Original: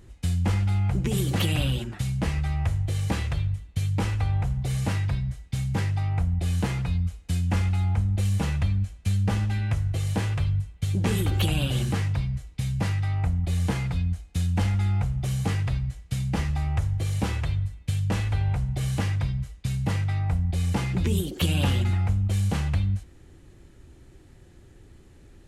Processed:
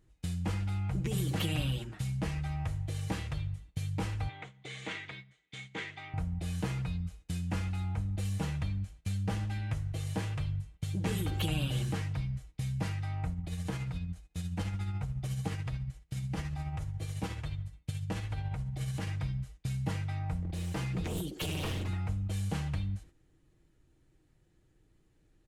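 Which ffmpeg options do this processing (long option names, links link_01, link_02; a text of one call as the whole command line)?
ffmpeg -i in.wav -filter_complex "[0:a]asettb=1/sr,asplit=3[link_01][link_02][link_03];[link_01]atrim=end=4.294[link_04];[link_02]atrim=start=4.29:end=6.14,asetpts=PTS-STARTPTS,afade=type=in:duration=0.004:curve=qsin,afade=type=out:start_time=1.846:duration=0.004:curve=qsin,highpass=330,equalizer=frequency=400:width_type=q:width=4:gain=5,equalizer=frequency=570:width_type=q:width=4:gain=-5,equalizer=frequency=850:width_type=q:width=4:gain=-5,equalizer=frequency=2100:width_type=q:width=4:gain=10,equalizer=frequency=3400:width_type=q:width=4:gain=9,equalizer=frequency=5200:width_type=q:width=4:gain=-9,lowpass=frequency=7100:width=0.5412,lowpass=frequency=7100:width=1.3066[link_05];[link_03]atrim=start=6.136[link_06];[link_04][link_05]acrossfade=duration=0.004:curve1=hsin:curve2=qsin[link_07];[link_07][link_06]acrossfade=duration=0.004:curve1=qsin:curve2=hsin,asettb=1/sr,asplit=3[link_08][link_09][link_10];[link_08]atrim=end=13.324[link_11];[link_09]atrim=start=13.32:end=19.07,asetpts=PTS-STARTPTS,afade=type=in:duration=0.004:curve=qsin,afade=type=out:start_time=5.746:duration=0.004:curve=qsin,tremolo=f=14:d=0.41[link_12];[link_10]atrim=start=19.066[link_13];[link_11][link_12]acrossfade=duration=0.004:curve1=hsin:curve2=qsin[link_14];[link_14][link_13]acrossfade=duration=0.004:curve1=qsin:curve2=hsin,asettb=1/sr,asplit=3[link_15][link_16][link_17];[link_15]atrim=end=20.424[link_18];[link_16]atrim=start=20.42:end=21.89,asetpts=PTS-STARTPTS,afade=type=in:duration=0.004:curve=qsin,afade=type=out:start_time=1.466:duration=0.004:curve=qsin,aeval=exprs='0.0944*(abs(mod(val(0)/0.0944+3,4)-2)-1)':channel_layout=same[link_19];[link_17]atrim=start=21.886[link_20];[link_18][link_19]acrossfade=duration=0.004:curve1=hsin:curve2=qsin[link_21];[link_21][link_20]acrossfade=duration=0.004:curve1=qsin:curve2=hsin,agate=range=-9dB:threshold=-40dB:ratio=16:detection=peak,aecho=1:1:6.4:0.38,volume=-8dB" out.wav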